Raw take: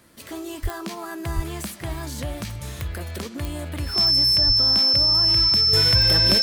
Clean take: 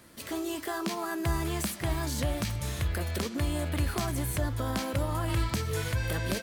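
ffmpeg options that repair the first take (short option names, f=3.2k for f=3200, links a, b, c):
-filter_complex "[0:a]adeclick=t=4,bandreject=f=5.3k:w=30,asplit=3[a][b][c];[a]afade=t=out:st=0.62:d=0.02[d];[b]highpass=f=140:w=0.5412,highpass=f=140:w=1.3066,afade=t=in:st=0.62:d=0.02,afade=t=out:st=0.74:d=0.02[e];[c]afade=t=in:st=0.74:d=0.02[f];[d][e][f]amix=inputs=3:normalize=0,asplit=3[g][h][i];[g]afade=t=out:st=1.35:d=0.02[j];[h]highpass=f=140:w=0.5412,highpass=f=140:w=1.3066,afade=t=in:st=1.35:d=0.02,afade=t=out:st=1.47:d=0.02[k];[i]afade=t=in:st=1.47:d=0.02[l];[j][k][l]amix=inputs=3:normalize=0,asplit=3[m][n][o];[m]afade=t=out:st=4.46:d=0.02[p];[n]highpass=f=140:w=0.5412,highpass=f=140:w=1.3066,afade=t=in:st=4.46:d=0.02,afade=t=out:st=4.58:d=0.02[q];[o]afade=t=in:st=4.58:d=0.02[r];[p][q][r]amix=inputs=3:normalize=0,asetnsamples=n=441:p=0,asendcmd='5.73 volume volume -7.5dB',volume=0dB"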